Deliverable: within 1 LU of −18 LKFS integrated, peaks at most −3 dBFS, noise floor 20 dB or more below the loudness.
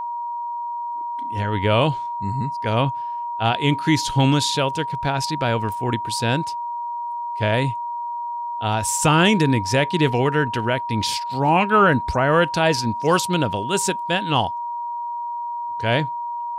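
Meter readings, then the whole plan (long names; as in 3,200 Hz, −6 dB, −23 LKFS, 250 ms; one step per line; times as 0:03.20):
interfering tone 950 Hz; level of the tone −25 dBFS; integrated loudness −21.5 LKFS; sample peak −4.0 dBFS; target loudness −18.0 LKFS
→ notch filter 950 Hz, Q 30
level +3.5 dB
brickwall limiter −3 dBFS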